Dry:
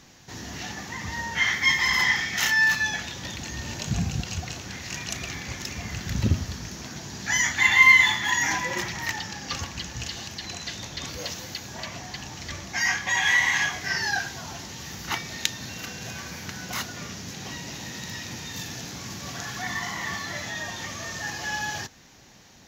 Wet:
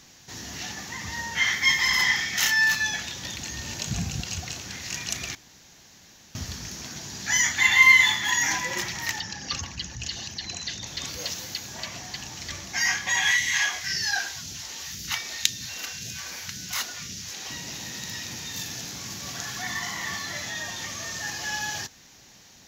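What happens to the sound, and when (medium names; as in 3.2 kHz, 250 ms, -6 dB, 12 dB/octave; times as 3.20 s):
5.35–6.35 s: room tone
9.20–10.87 s: resonances exaggerated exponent 1.5
13.31–17.50 s: phase shifter stages 2, 1.9 Hz, lowest notch 110–1000 Hz
whole clip: treble shelf 2.6 kHz +8 dB; trim -3.5 dB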